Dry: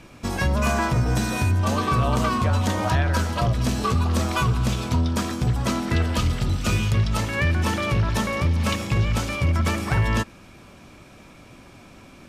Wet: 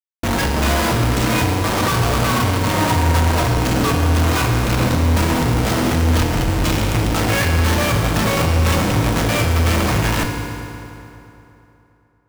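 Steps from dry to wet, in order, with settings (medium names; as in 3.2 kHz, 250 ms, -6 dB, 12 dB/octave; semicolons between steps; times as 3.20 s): Schmitt trigger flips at -32.5 dBFS; reverberation RT60 3.1 s, pre-delay 3 ms, DRR 2 dB; trim +3.5 dB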